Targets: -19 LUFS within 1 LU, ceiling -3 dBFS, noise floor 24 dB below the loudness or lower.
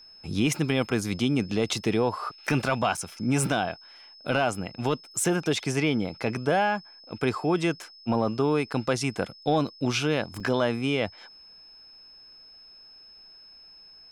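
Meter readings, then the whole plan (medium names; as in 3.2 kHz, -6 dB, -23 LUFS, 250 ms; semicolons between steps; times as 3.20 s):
dropouts 2; longest dropout 5.5 ms; steady tone 5.2 kHz; tone level -48 dBFS; loudness -27.0 LUFS; peak level -13.0 dBFS; loudness target -19.0 LUFS
-> interpolate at 2.97/10.40 s, 5.5 ms; band-stop 5.2 kHz, Q 30; trim +8 dB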